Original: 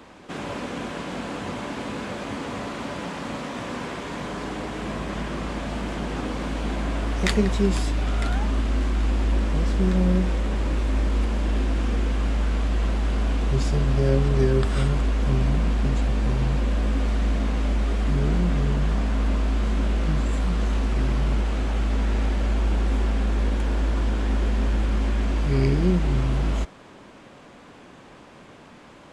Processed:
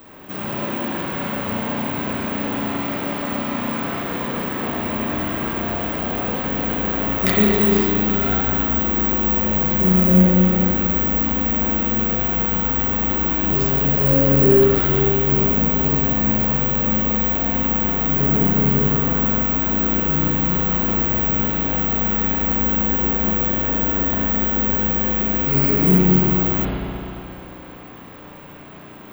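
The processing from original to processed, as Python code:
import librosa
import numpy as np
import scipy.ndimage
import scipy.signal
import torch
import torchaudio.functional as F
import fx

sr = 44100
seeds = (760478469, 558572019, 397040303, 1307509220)

y = (np.kron(x[::2], np.eye(2)[0]) * 2)[:len(x)]
y = fx.rev_spring(y, sr, rt60_s=2.8, pass_ms=(33, 43), chirp_ms=30, drr_db=-6.0)
y = F.gain(torch.from_numpy(y), -1.0).numpy()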